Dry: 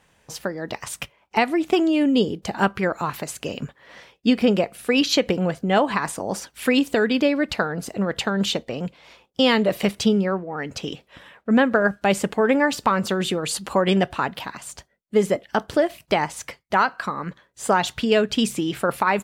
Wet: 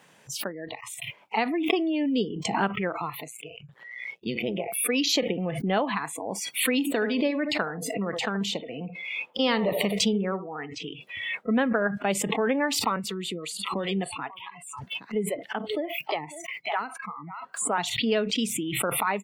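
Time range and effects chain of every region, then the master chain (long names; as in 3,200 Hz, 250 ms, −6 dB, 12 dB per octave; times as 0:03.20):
0:03.27–0:04.77: amplitude modulation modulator 120 Hz, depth 75% + gain into a clipping stage and back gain 10.5 dB + parametric band 270 Hz −9.5 dB 0.27 octaves
0:06.79–0:10.82: parametric band 1,100 Hz +2.5 dB 0.84 octaves + feedback echo with a band-pass in the loop 76 ms, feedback 48%, band-pass 590 Hz, level −9.5 dB
0:12.96–0:17.78: single-tap delay 545 ms −14 dB + two-band tremolo in antiphase 4.9 Hz, crossover 430 Hz
whole clip: high-pass filter 140 Hz 24 dB per octave; noise reduction from a noise print of the clip's start 29 dB; background raised ahead of every attack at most 37 dB per second; level −7 dB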